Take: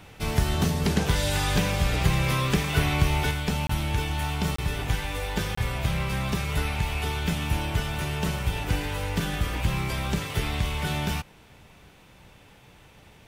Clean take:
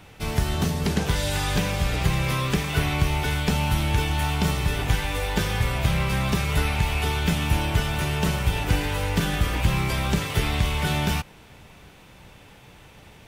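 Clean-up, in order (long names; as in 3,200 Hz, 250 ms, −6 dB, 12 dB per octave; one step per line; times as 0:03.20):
repair the gap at 0:03.67/0:04.56/0:05.55, 24 ms
level correction +4 dB, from 0:03.31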